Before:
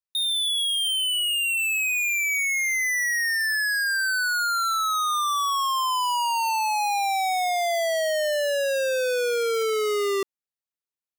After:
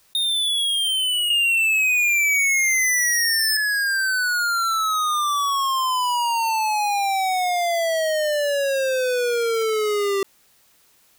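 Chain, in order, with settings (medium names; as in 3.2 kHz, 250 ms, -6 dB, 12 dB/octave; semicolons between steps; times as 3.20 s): 1.30–3.57 s: resonant high shelf 2 kHz +11 dB, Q 3; peak limiter -10.5 dBFS, peak gain reduction 8.5 dB; level flattener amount 70%; trim -4 dB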